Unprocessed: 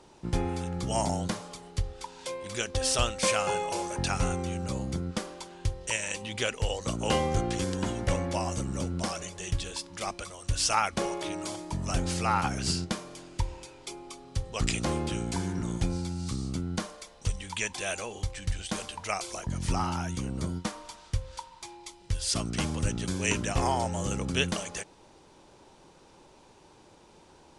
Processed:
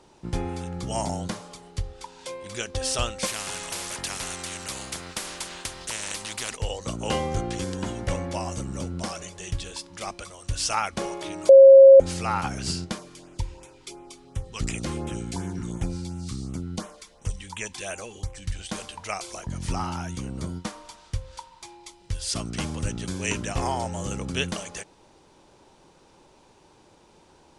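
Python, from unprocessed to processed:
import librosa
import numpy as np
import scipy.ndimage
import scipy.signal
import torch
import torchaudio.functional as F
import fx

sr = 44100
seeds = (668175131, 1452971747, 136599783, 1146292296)

y = fx.spectral_comp(x, sr, ratio=4.0, at=(3.25, 6.55), fade=0.02)
y = fx.filter_lfo_notch(y, sr, shape='sine', hz=2.8, low_hz=570.0, high_hz=4700.0, q=1.1, at=(12.98, 18.54), fade=0.02)
y = fx.edit(y, sr, fx.bleep(start_s=11.49, length_s=0.51, hz=541.0, db=-6.0), tone=tone)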